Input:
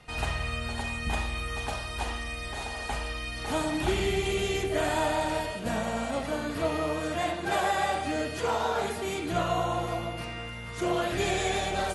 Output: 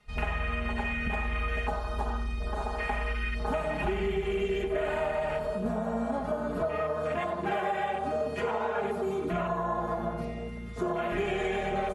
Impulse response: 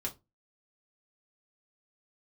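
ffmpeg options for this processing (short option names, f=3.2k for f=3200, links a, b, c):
-af "afwtdn=0.02,aecho=1:1:4.8:0.87,acompressor=threshold=-31dB:ratio=6,aecho=1:1:92|184|276|368|460:0.224|0.116|0.0605|0.0315|0.0164,volume=3.5dB"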